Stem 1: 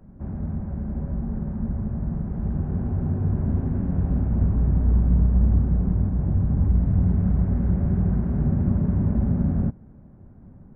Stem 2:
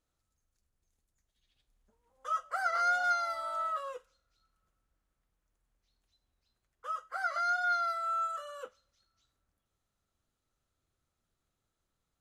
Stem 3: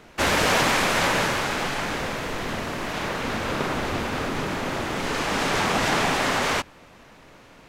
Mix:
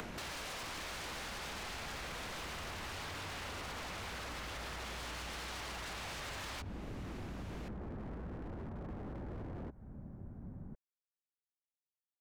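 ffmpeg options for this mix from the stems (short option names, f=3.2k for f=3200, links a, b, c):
-filter_complex "[0:a]volume=-0.5dB[a];[2:a]acompressor=mode=upward:threshold=-40dB:ratio=2.5,volume=2.5dB[b];[a][b]amix=inputs=2:normalize=0,acrossover=split=92|510|5100[c][d][e][f];[c]acompressor=threshold=-30dB:ratio=4[g];[d]acompressor=threshold=-39dB:ratio=4[h];[e]acompressor=threshold=-25dB:ratio=4[i];[f]acompressor=threshold=-45dB:ratio=4[j];[g][h][i][j]amix=inputs=4:normalize=0,alimiter=limit=-22dB:level=0:latency=1:release=130,volume=0dB,aeval=exprs='0.0266*(abs(mod(val(0)/0.0266+3,4)-2)-1)':c=same,acompressor=threshold=-42dB:ratio=6"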